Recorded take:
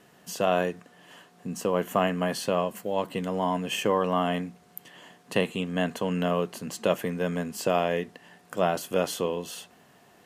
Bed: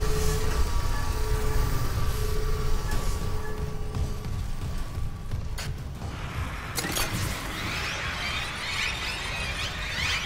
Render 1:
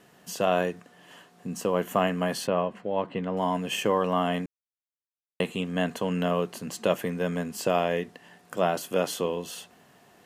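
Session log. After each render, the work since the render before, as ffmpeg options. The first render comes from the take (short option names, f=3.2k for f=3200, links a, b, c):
-filter_complex "[0:a]asettb=1/sr,asplit=3[a][b][c];[a]atrim=end=2.474[d];[b]atrim=start=2.47:end=3.37,asetpts=PTS-STARTPTS,afade=t=in:d=0.004:c=qsin,afade=t=out:st=0.896:d=0.004:c=qsin,lowpass=2.6k[e];[c]atrim=start=3.366[f];[d][e]acrossfade=d=0.004:c1=hsin:c2=qsin[g];[g][f]acrossfade=d=0.004:c1=qsin:c2=hsin,asettb=1/sr,asplit=3[h][i][j];[h]atrim=end=8.574[k];[i]atrim=start=8.57:end=9.22,asetpts=PTS-STARTPTS,afade=t=in:d=0.004:c=qsin,afade=t=out:st=0.646:d=0.004:c=qsin,highpass=120[l];[j]atrim=start=9.216[m];[k][l]acrossfade=d=0.004:c1=hsin:c2=qsin[n];[n][m]acrossfade=d=0.004:c1=qsin:c2=hsin,asplit=3[o][p][q];[o]atrim=end=4.46,asetpts=PTS-STARTPTS,afade=t=out:st=4.456:d=0.004:c=hsin[r];[p]atrim=start=4.46:end=5.4,asetpts=PTS-STARTPTS,volume=0[s];[q]atrim=start=5.4,asetpts=PTS-STARTPTS,afade=t=in:d=0.004:c=hsin[t];[r][s][t]concat=n=3:v=0:a=1"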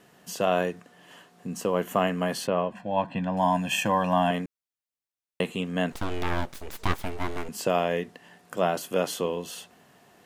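-filter_complex "[0:a]asettb=1/sr,asplit=3[a][b][c];[a]atrim=end=2.724[d];[b]atrim=start=2.72:end=4.31,asetpts=PTS-STARTPTS,afade=t=in:d=0.004:c=qsin,afade=t=out:st=1.586:d=0.004:c=qsin,aecho=1:1:1.2:0.96,atrim=end_sample=70119[e];[c]atrim=start=4.306[f];[d][e]acrossfade=d=0.004:c1=hsin:c2=qsin[g];[g][f]acrossfade=d=0.004:c1=qsin:c2=hsin,asettb=1/sr,asplit=3[h][i][j];[h]atrim=end=5.924[k];[i]atrim=start=5.92:end=7.49,asetpts=PTS-STARTPTS,afade=t=in:d=0.004:c=qsin,afade=t=out:st=1.566:d=0.004:c=qsin,aeval=exprs='abs(val(0))':c=same[l];[j]atrim=start=7.486[m];[k][l]acrossfade=d=0.004:c1=hsin:c2=qsin[n];[n][m]acrossfade=d=0.004:c1=qsin:c2=hsin"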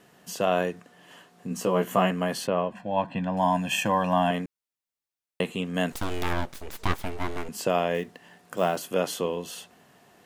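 -filter_complex "[0:a]asettb=1/sr,asplit=3[a][b][c];[a]atrim=end=1.494[d];[b]atrim=start=1.49:end=2.11,asetpts=PTS-STARTPTS,afade=t=in:d=0.004:c=qsin,afade=t=out:st=0.616:d=0.004:c=qsin,asplit=2[e][f];[f]adelay=16,volume=-3dB[g];[e][g]amix=inputs=2:normalize=0,atrim=end_sample=27342[h];[c]atrim=start=2.106[i];[d][h]acrossfade=d=0.004:c1=hsin:c2=qsin[j];[j][i]acrossfade=d=0.004:c1=qsin:c2=hsin,asettb=1/sr,asplit=3[k][l][m];[k]atrim=end=5.744[n];[l]atrim=start=5.74:end=6.33,asetpts=PTS-STARTPTS,afade=t=in:d=0.004:c=qsin,afade=t=out:st=0.586:d=0.004:c=qsin,highshelf=f=5.7k:g=9.5[o];[m]atrim=start=6.326[p];[n][o]acrossfade=d=0.004:c1=hsin:c2=qsin[q];[q][p]acrossfade=d=0.004:c1=qsin:c2=hsin,asettb=1/sr,asplit=3[r][s][t];[r]atrim=end=7.944[u];[s]atrim=start=7.94:end=8.88,asetpts=PTS-STARTPTS,afade=t=in:d=0.004:c=qsin,afade=t=out:st=0.936:d=0.004:c=qsin,acrusher=bits=7:mode=log:mix=0:aa=0.000001[v];[t]atrim=start=8.876[w];[u][v]acrossfade=d=0.004:c1=hsin:c2=qsin[x];[x][w]acrossfade=d=0.004:c1=qsin:c2=hsin"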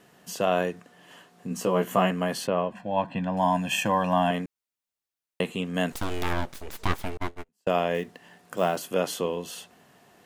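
-filter_complex "[0:a]asettb=1/sr,asplit=3[a][b][c];[a]atrim=end=7.174[d];[b]atrim=start=7.17:end=7.85,asetpts=PTS-STARTPTS,afade=t=in:d=0.004:c=qsin,afade=t=out:st=0.676:d=0.004:c=qsin,agate=range=-39dB:threshold=-28dB:ratio=16:release=100:detection=peak[e];[c]atrim=start=7.846[f];[d][e]acrossfade=d=0.004:c1=hsin:c2=qsin[g];[g][f]acrossfade=d=0.004:c1=qsin:c2=hsin"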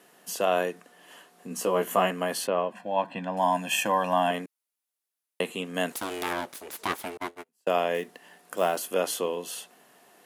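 -af "highpass=280,equalizer=f=11k:w=1.6:g=8.5"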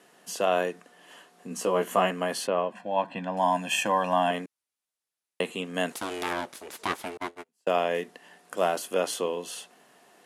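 -af "lowpass=10k"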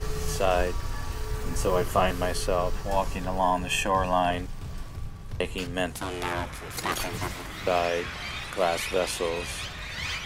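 -filter_complex "[1:a]volume=-5dB[a];[0:a][a]amix=inputs=2:normalize=0"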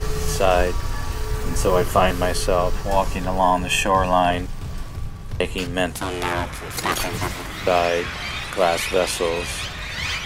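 -af "volume=6.5dB,alimiter=limit=-3dB:level=0:latency=1"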